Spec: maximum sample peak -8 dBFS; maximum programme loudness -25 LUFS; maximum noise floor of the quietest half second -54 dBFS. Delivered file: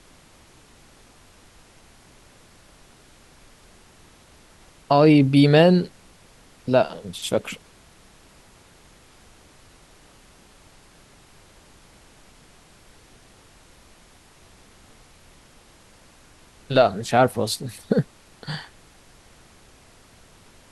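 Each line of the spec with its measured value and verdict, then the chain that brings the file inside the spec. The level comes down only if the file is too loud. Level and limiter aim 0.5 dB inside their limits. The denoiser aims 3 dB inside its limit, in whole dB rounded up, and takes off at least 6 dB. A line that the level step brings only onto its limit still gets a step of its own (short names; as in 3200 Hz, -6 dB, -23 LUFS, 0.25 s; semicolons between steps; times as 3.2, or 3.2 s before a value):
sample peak -4.0 dBFS: fail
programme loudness -20.0 LUFS: fail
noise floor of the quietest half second -52 dBFS: fail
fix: gain -5.5 dB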